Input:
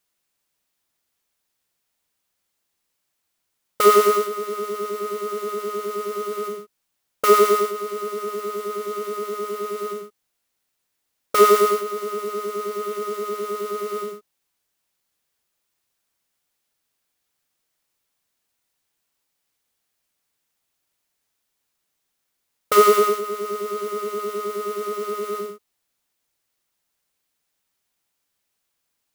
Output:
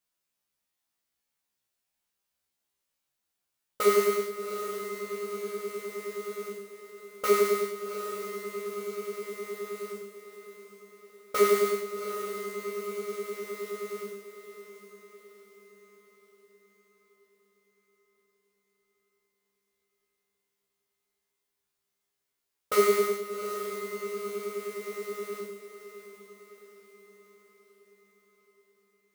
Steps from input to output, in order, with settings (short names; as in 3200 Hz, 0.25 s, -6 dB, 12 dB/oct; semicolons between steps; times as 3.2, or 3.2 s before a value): resonator 67 Hz, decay 0.29 s, harmonics all, mix 100%; diffused feedback echo 0.759 s, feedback 52%, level -11 dB